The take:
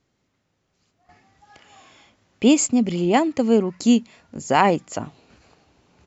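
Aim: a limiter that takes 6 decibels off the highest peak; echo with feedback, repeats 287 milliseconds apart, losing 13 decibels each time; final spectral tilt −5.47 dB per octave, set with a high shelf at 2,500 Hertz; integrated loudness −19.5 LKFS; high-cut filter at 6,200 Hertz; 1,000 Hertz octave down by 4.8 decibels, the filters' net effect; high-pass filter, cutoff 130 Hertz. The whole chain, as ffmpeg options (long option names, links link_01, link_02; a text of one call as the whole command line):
ffmpeg -i in.wav -af "highpass=130,lowpass=6200,equalizer=frequency=1000:width_type=o:gain=-6,highshelf=frequency=2500:gain=-3.5,alimiter=limit=-12dB:level=0:latency=1,aecho=1:1:287|574|861:0.224|0.0493|0.0108,volume=4dB" out.wav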